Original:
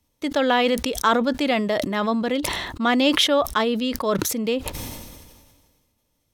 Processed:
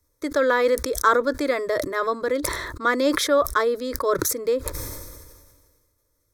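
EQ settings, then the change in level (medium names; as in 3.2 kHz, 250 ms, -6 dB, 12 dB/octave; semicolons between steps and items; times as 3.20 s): static phaser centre 780 Hz, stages 6; +3.0 dB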